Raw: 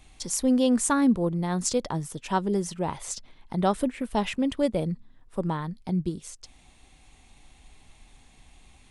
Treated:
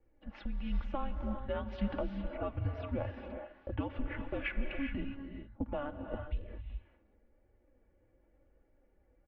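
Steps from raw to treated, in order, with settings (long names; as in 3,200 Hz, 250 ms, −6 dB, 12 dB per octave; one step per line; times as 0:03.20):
low-pass that shuts in the quiet parts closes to 410 Hz, open at −21.5 dBFS
low-shelf EQ 230 Hz −9 dB
comb filter 3.4 ms, depth 70%
brickwall limiter −19.5 dBFS, peak gain reduction 8 dB
downward compressor 3 to 1, threshold −35 dBFS, peak gain reduction 9.5 dB
flanger 0.97 Hz, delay 2.6 ms, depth 2.4 ms, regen +52%
single-sideband voice off tune −290 Hz 230–3,200 Hz
wrong playback speed 25 fps video run at 24 fps
reverb whose tail is shaped and stops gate 440 ms rising, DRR 5 dB
level +5 dB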